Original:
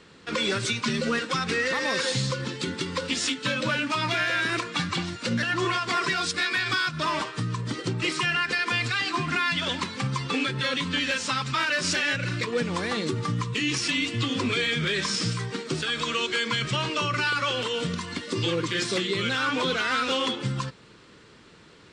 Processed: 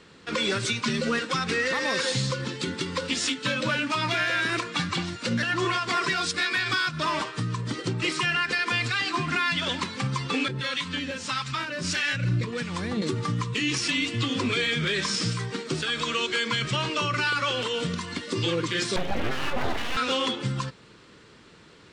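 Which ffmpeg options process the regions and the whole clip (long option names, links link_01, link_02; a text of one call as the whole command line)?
ffmpeg -i in.wav -filter_complex "[0:a]asettb=1/sr,asplit=3[link_01][link_02][link_03];[link_01]atrim=end=10.484[link_04];[link_02]atrim=start=10.48:end=13.02,asetpts=PTS-STARTPTS,afade=type=in:duration=0.004:curve=qsin,afade=type=out:start_time=2.536:duration=0.004:curve=qsin,asubboost=boost=4:cutoff=250,acrossover=split=800[link_05][link_06];[link_05]aeval=exprs='val(0)*(1-0.7/2+0.7/2*cos(2*PI*1.6*n/s))':channel_layout=same[link_07];[link_06]aeval=exprs='val(0)*(1-0.7/2-0.7/2*cos(2*PI*1.6*n/s))':channel_layout=same[link_08];[link_07][link_08]amix=inputs=2:normalize=0[link_09];[link_03]atrim=start=13.016[link_10];[link_04][link_09]acrossfade=duration=0.004:curve1=hsin:curve2=qsin[link_11];[link_11][link_10]acrossfade=duration=0.004:curve1=qsin:curve2=hsin,asettb=1/sr,asplit=3[link_12][link_13][link_14];[link_12]atrim=end=18.964[link_15];[link_13]atrim=start=18.96:end=19.97,asetpts=PTS-STARTPTS,afade=type=in:duration=0.004:curve=qsin,afade=type=out:start_time=1.006:duration=0.004:curve=qsin,lowpass=1800,lowshelf=frequency=300:gain=8,aeval=exprs='abs(val(0))':channel_layout=same[link_16];[link_14]atrim=start=19.966[link_17];[link_15][link_16]acrossfade=duration=0.004:curve1=hsin:curve2=qsin[link_18];[link_18][link_17]acrossfade=duration=0.004:curve1=qsin:curve2=hsin" out.wav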